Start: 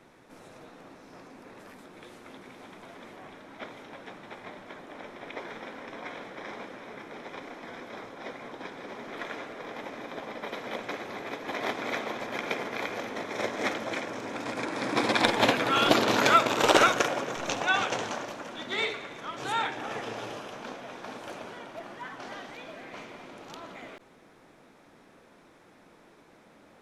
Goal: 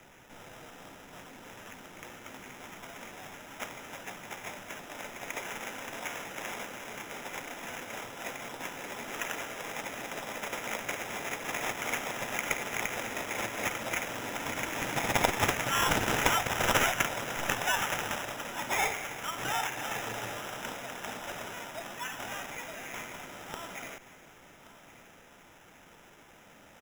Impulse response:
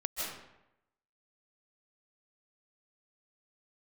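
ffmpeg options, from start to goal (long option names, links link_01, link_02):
-filter_complex "[0:a]acrossover=split=130|3000[link_01][link_02][link_03];[link_02]acompressor=threshold=-34dB:ratio=6[link_04];[link_01][link_04][link_03]amix=inputs=3:normalize=0,equalizer=frequency=340:width_type=o:width=2.3:gain=-10,acrusher=samples=10:mix=1:aa=0.000001,bandreject=frequency=1100:width=10,aecho=1:1:1126:0.141,volume=6dB"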